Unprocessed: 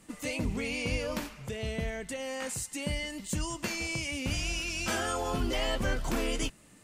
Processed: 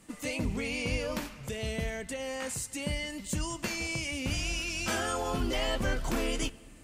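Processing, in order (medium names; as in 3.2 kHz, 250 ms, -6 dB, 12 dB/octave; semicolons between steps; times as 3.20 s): 1.43–2.02 s: treble shelf 4.6 kHz +6.5 dB; on a send: reverberation RT60 2.7 s, pre-delay 3 ms, DRR 21 dB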